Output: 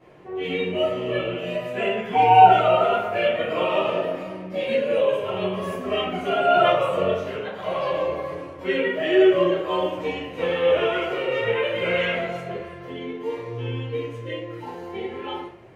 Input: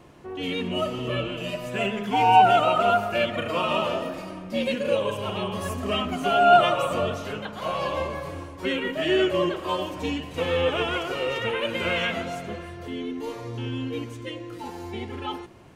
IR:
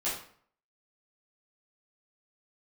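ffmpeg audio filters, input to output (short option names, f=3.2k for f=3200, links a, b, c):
-filter_complex "[0:a]equalizer=f=125:t=o:w=1:g=8,equalizer=f=500:t=o:w=1:g=11,equalizer=f=2k:t=o:w=1:g=9,equalizer=f=8k:t=o:w=1:g=-4[a];[1:a]atrim=start_sample=2205,asetrate=48510,aresample=44100[b];[a][b]afir=irnorm=-1:irlink=0,volume=-10.5dB"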